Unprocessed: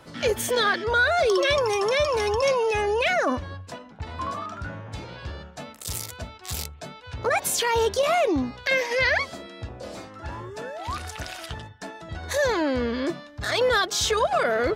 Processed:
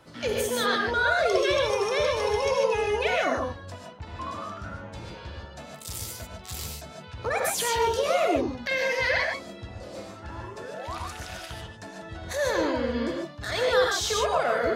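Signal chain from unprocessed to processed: non-linear reverb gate 0.17 s rising, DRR 0 dB; gain -5.5 dB

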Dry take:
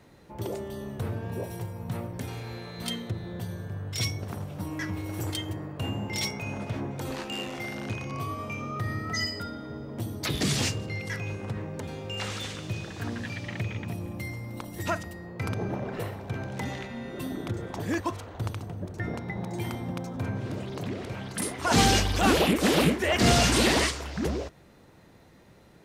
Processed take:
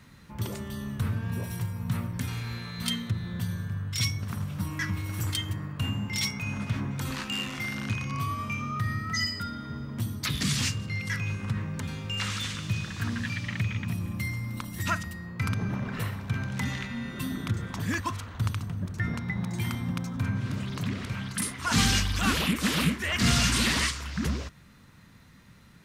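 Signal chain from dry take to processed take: band shelf 510 Hz -12.5 dB; in parallel at +1 dB: vocal rider within 5 dB 0.5 s; on the sum: gain -5 dB

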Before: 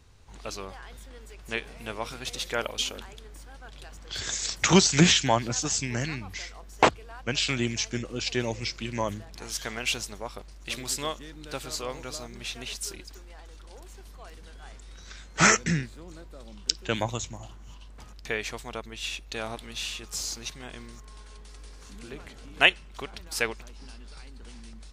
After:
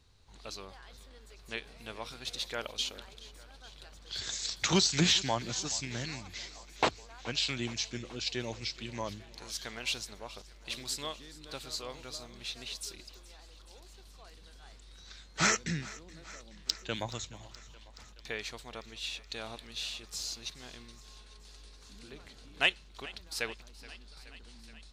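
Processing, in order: bell 4100 Hz +8.5 dB 0.57 oct; soft clip -2 dBFS, distortion -27 dB; on a send: thinning echo 0.424 s, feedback 72%, high-pass 250 Hz, level -19 dB; on the sum: gain -8.5 dB

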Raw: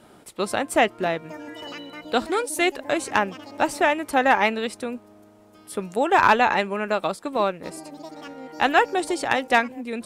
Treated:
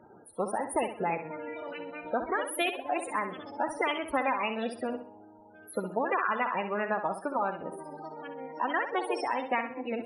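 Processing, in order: compressor 6:1, threshold -22 dBFS, peak gain reduction 10.5 dB; loudest bins only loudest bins 32; formant shift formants +3 st; flutter echo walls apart 11 m, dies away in 0.43 s; gain -3 dB

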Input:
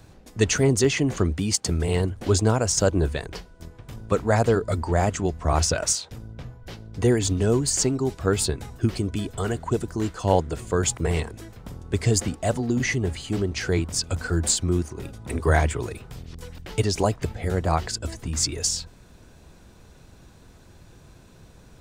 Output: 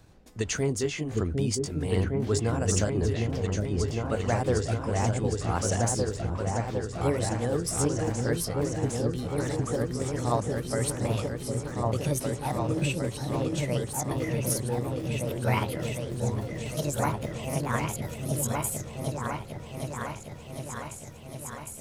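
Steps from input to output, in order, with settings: gliding pitch shift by +8 st starting unshifted; repeats that get brighter 0.757 s, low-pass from 400 Hz, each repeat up 2 oct, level 0 dB; ending taper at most 250 dB/s; gain -6.5 dB

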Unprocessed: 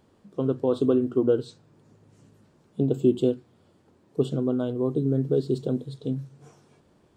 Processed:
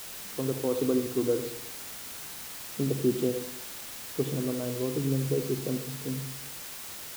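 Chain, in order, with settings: requantised 6-bit, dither triangular; reverb RT60 0.70 s, pre-delay 60 ms, DRR 7.5 dB; gain -5.5 dB

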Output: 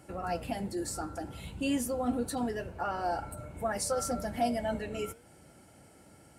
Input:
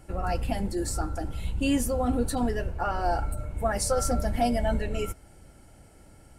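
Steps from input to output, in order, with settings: HPF 120 Hz 12 dB/oct; in parallel at -2.5 dB: compressor, threshold -42 dBFS, peak gain reduction 19.5 dB; on the sum: flange 0.51 Hz, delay 3.1 ms, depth 7.6 ms, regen +89%; gain -1 dB

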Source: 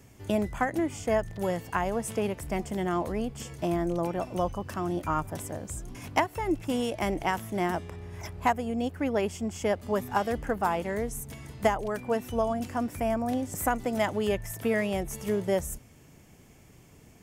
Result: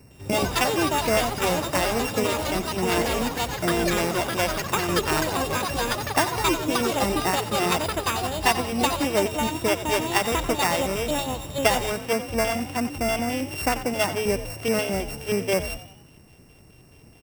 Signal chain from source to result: sample sorter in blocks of 16 samples; LFO notch square 4.7 Hz 200–3200 Hz; echoes that change speed 0.107 s, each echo +5 st, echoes 3; frequency-shifting echo 90 ms, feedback 46%, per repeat +49 Hz, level -13 dB; gain +4 dB

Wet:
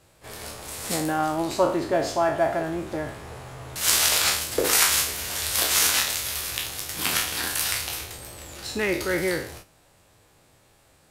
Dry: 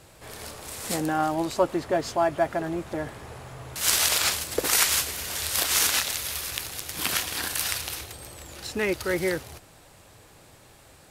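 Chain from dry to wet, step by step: spectral trails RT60 0.52 s; gate -43 dBFS, range -8 dB

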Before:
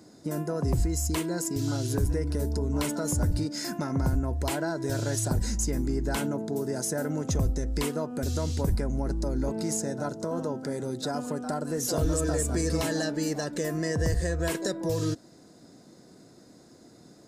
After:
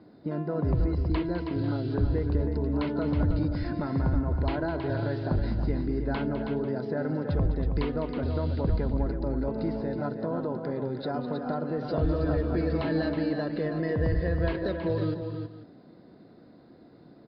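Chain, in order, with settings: steep low-pass 4700 Hz 96 dB/oct; high shelf 3100 Hz -11 dB; tapped delay 0.205/0.321/0.494 s -11.5/-7.5/-17.5 dB

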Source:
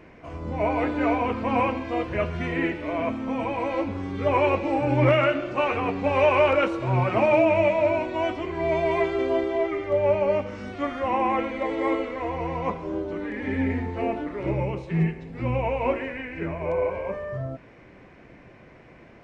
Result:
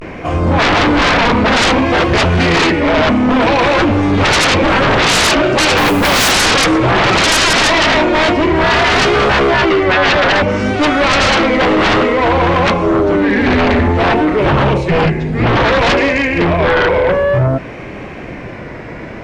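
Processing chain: vibrato 0.57 Hz 87 cents; 5.77–6.32 modulation noise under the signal 23 dB; sine folder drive 18 dB, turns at -8 dBFS

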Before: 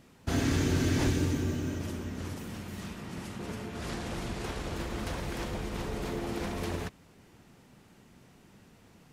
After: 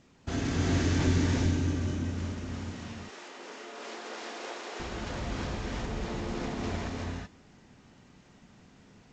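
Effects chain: 2.71–4.8 HPF 370 Hz 24 dB/oct; non-linear reverb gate 0.4 s rising, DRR -2 dB; gain -3.5 dB; G.722 64 kbps 16000 Hz

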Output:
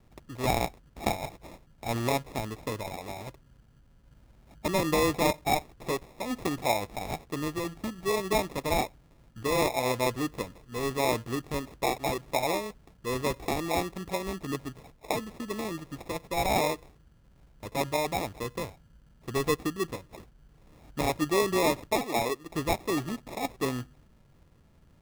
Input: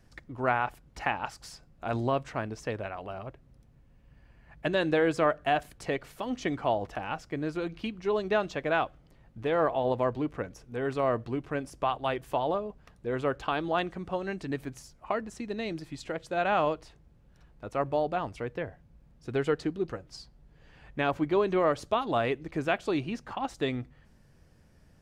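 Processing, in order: 21.99–22.5 tone controls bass -11 dB, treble -5 dB; sample-and-hold 29×

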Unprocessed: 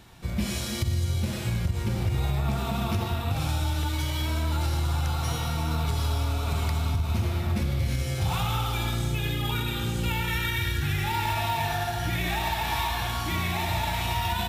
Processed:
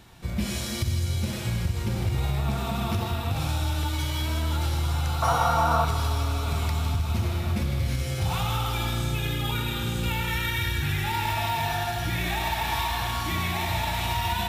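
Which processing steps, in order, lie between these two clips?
5.22–5.85 band shelf 900 Hz +14 dB; thinning echo 0.159 s, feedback 80%, high-pass 640 Hz, level -10.5 dB

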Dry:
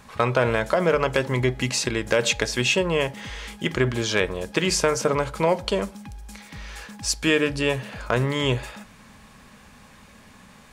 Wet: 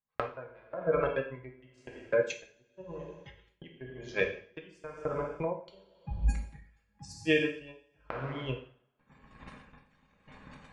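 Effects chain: recorder AGC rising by 69 dB/s; spectral gate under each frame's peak -20 dB strong; 2.45–3.08 band shelf 3200 Hz -13 dB; gate -18 dBFS, range -53 dB; compressor, threshold -23 dBFS, peak gain reduction 12 dB; two-slope reverb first 0.74 s, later 2.4 s, from -18 dB, DRR 0.5 dB; dB-linear tremolo 0.95 Hz, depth 21 dB

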